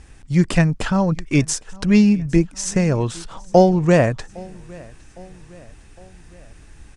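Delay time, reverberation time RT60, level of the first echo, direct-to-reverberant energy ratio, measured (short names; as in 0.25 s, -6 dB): 0.809 s, none, -24.0 dB, none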